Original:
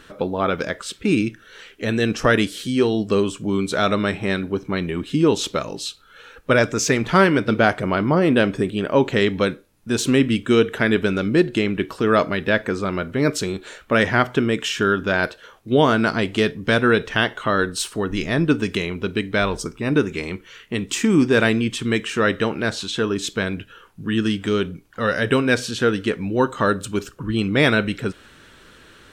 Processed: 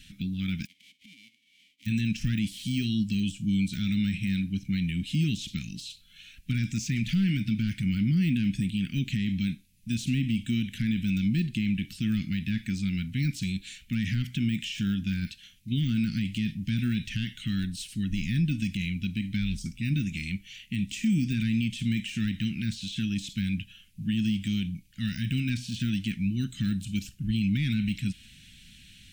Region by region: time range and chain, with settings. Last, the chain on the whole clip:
0.65–1.85 s: formants flattened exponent 0.1 + vowel filter i + compression 4:1, threshold -50 dBFS
whole clip: de-esser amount 90%; elliptic band-stop 210–2400 Hz, stop band 50 dB; peak limiter -18.5 dBFS

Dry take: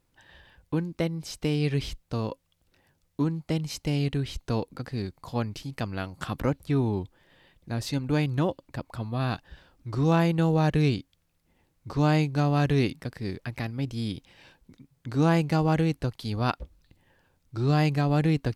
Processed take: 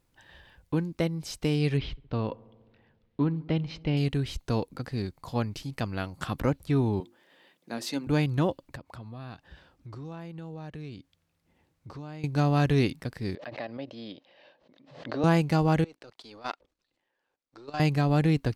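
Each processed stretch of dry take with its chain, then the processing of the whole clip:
1.77–3.97 s: low-pass 3.7 kHz 24 dB/octave + filtered feedback delay 68 ms, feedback 79%, low-pass 1.7 kHz, level -23 dB
7.00–8.07 s: high-pass 210 Hz 24 dB/octave + hum notches 50/100/150/200/250/300/350 Hz
8.76–12.24 s: high-pass 57 Hz + treble shelf 7.4 kHz -7.5 dB + compression 4:1, threshold -41 dBFS
13.35–15.24 s: cabinet simulation 400–3800 Hz, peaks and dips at 410 Hz -4 dB, 590 Hz +10 dB, 930 Hz -4 dB, 1.4 kHz -8 dB, 2.3 kHz -8 dB, 3.4 kHz -4 dB + swell ahead of each attack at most 84 dB/s
15.84–17.80 s: partial rectifier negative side -7 dB + three-band isolator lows -23 dB, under 290 Hz, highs -19 dB, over 7.8 kHz + level held to a coarse grid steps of 16 dB
whole clip: none

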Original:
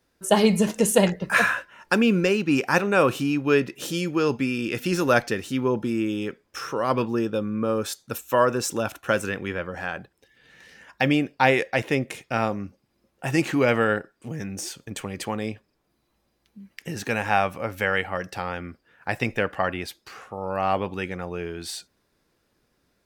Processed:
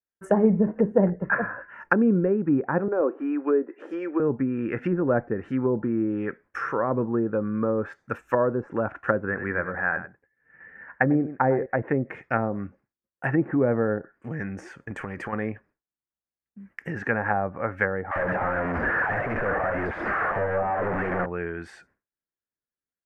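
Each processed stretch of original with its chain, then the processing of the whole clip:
2.88–4.20 s: steep high-pass 280 Hz + de-esser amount 80% + treble shelf 2.1 kHz -9 dB
9.25–11.66 s: low-pass 2.2 kHz 24 dB/octave + delay 97 ms -12 dB
14.90–15.33 s: compression, threshold -32 dBFS + treble shelf 12 kHz +10.5 dB + waveshaping leveller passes 1
18.11–21.26 s: one-bit comparator + peaking EQ 640 Hz +9 dB 1 oct + bands offset in time highs, lows 50 ms, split 690 Hz
whole clip: expander -48 dBFS; low-pass that closes with the level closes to 570 Hz, closed at -19.5 dBFS; resonant high shelf 2.6 kHz -14 dB, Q 3

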